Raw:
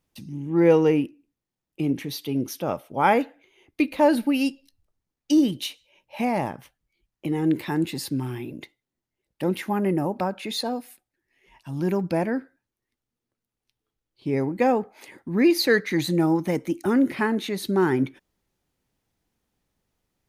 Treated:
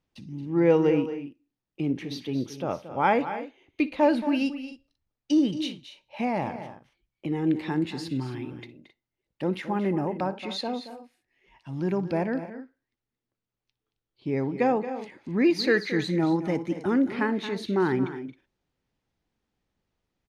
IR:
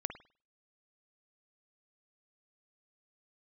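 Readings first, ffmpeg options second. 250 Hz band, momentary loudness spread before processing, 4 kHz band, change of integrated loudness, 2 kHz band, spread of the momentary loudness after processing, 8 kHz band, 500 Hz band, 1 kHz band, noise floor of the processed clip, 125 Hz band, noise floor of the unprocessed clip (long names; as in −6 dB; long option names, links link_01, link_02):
−2.5 dB, 14 LU, −4.0 dB, −3.0 dB, −2.5 dB, 16 LU, can't be measured, −2.5 dB, −2.5 dB, below −85 dBFS, −2.5 dB, below −85 dBFS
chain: -af "lowpass=5100,aecho=1:1:60|225|267:0.112|0.237|0.158,volume=-3dB"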